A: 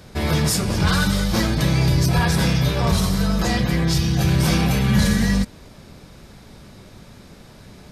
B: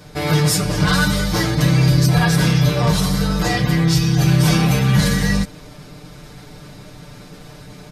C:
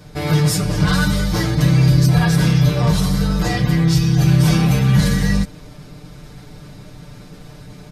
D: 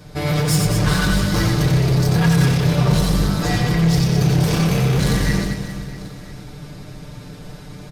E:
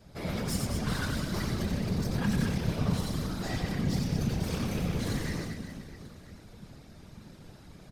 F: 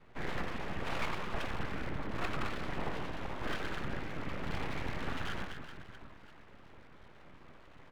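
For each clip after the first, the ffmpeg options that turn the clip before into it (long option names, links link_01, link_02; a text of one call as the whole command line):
ffmpeg -i in.wav -af "aecho=1:1:6.7:0.92,areverse,acompressor=mode=upward:threshold=-32dB:ratio=2.5,areverse" out.wav
ffmpeg -i in.wav -af "lowshelf=frequency=240:gain=6,volume=-3dB" out.wav
ffmpeg -i in.wav -filter_complex "[0:a]volume=15.5dB,asoftclip=hard,volume=-15.5dB,asplit=2[link_01][link_02];[link_02]aecho=0:1:90|216|392.4|639.4|985.1:0.631|0.398|0.251|0.158|0.1[link_03];[link_01][link_03]amix=inputs=2:normalize=0" out.wav
ffmpeg -i in.wav -af "afftfilt=real='hypot(re,im)*cos(2*PI*random(0))':imag='hypot(re,im)*sin(2*PI*random(1))':win_size=512:overlap=0.75,volume=-8dB" out.wav
ffmpeg -i in.wav -af "highpass=frequency=310:width_type=q:width=0.5412,highpass=frequency=310:width_type=q:width=1.307,lowpass=frequency=2800:width_type=q:width=0.5176,lowpass=frequency=2800:width_type=q:width=0.7071,lowpass=frequency=2800:width_type=q:width=1.932,afreqshift=-370,bandreject=frequency=83.77:width_type=h:width=4,bandreject=frequency=167.54:width_type=h:width=4,bandreject=frequency=251.31:width_type=h:width=4,bandreject=frequency=335.08:width_type=h:width=4,bandreject=frequency=418.85:width_type=h:width=4,bandreject=frequency=502.62:width_type=h:width=4,bandreject=frequency=586.39:width_type=h:width=4,bandreject=frequency=670.16:width_type=h:width=4,bandreject=frequency=753.93:width_type=h:width=4,bandreject=frequency=837.7:width_type=h:width=4,bandreject=frequency=921.47:width_type=h:width=4,bandreject=frequency=1005.24:width_type=h:width=4,bandreject=frequency=1089.01:width_type=h:width=4,bandreject=frequency=1172.78:width_type=h:width=4,bandreject=frequency=1256.55:width_type=h:width=4,bandreject=frequency=1340.32:width_type=h:width=4,bandreject=frequency=1424.09:width_type=h:width=4,bandreject=frequency=1507.86:width_type=h:width=4,bandreject=frequency=1591.63:width_type=h:width=4,bandreject=frequency=1675.4:width_type=h:width=4,bandreject=frequency=1759.17:width_type=h:width=4,bandreject=frequency=1842.94:width_type=h:width=4,bandreject=frequency=1926.71:width_type=h:width=4,bandreject=frequency=2010.48:width_type=h:width=4,bandreject=frequency=2094.25:width_type=h:width=4,bandreject=frequency=2178.02:width_type=h:width=4,bandreject=frequency=2261.79:width_type=h:width=4,bandreject=frequency=2345.56:width_type=h:width=4,bandreject=frequency=2429.33:width_type=h:width=4,bandreject=frequency=2513.1:width_type=h:width=4,bandreject=frequency=2596.87:width_type=h:width=4,bandreject=frequency=2680.64:width_type=h:width=4,aeval=exprs='abs(val(0))':channel_layout=same,volume=5dB" out.wav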